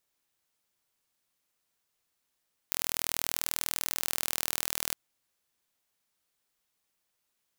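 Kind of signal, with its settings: pulse train 40.3/s, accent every 0, -3 dBFS 2.21 s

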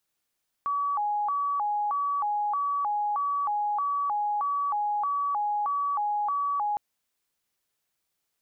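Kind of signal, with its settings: siren hi-lo 831–1140 Hz 1.6/s sine -24.5 dBFS 6.11 s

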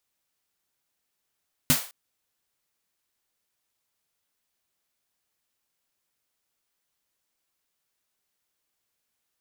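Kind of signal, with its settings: snare drum length 0.21 s, tones 150 Hz, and 250 Hz, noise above 520 Hz, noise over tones 1 dB, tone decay 0.13 s, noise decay 0.38 s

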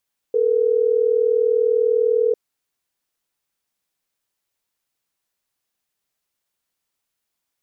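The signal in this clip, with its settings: call progress tone ringback tone, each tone -17.5 dBFS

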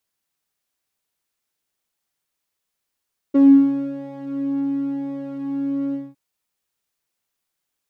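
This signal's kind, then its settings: synth patch with pulse-width modulation C#4, oscillator 2 saw, interval 0 st, detune 5 cents, oscillator 2 level -2.5 dB, sub -21.5 dB, filter bandpass, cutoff 130 Hz, Q 3.4, filter envelope 1.5 oct, filter decay 0.38 s, attack 17 ms, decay 0.58 s, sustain -6.5 dB, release 0.21 s, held 2.60 s, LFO 1 Hz, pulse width 32%, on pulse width 13%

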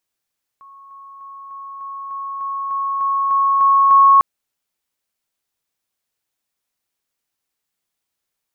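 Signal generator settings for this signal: level ladder 1100 Hz -39.5 dBFS, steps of 3 dB, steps 12, 0.30 s 0.00 s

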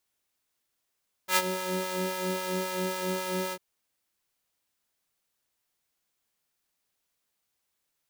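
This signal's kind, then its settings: synth patch with filter wobble F#3, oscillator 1 square, oscillator 2 sine, interval +12 st, oscillator 2 level -5.5 dB, noise -10.5 dB, filter highpass, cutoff 290 Hz, Q 0.91, filter envelope 1.5 oct, attack 84 ms, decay 0.05 s, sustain -14.5 dB, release 0.06 s, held 2.24 s, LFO 3.7 Hz, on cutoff 0.7 oct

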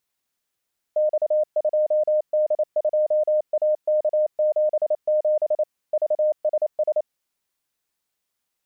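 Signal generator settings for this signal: Morse "X2D2AK77 VSS" 28 wpm 611 Hz -16.5 dBFS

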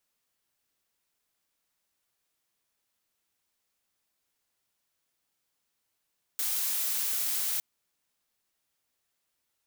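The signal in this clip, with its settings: noise blue, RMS -30 dBFS 1.21 s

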